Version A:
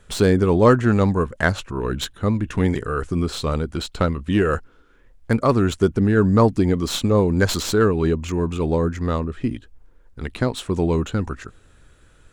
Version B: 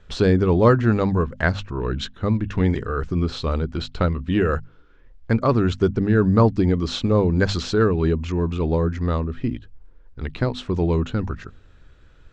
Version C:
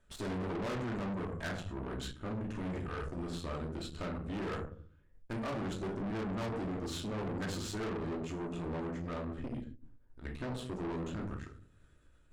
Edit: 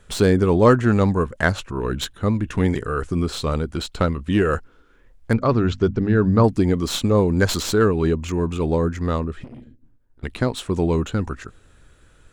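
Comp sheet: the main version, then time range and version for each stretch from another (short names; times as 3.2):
A
5.33–6.44 from B
9.44–10.23 from C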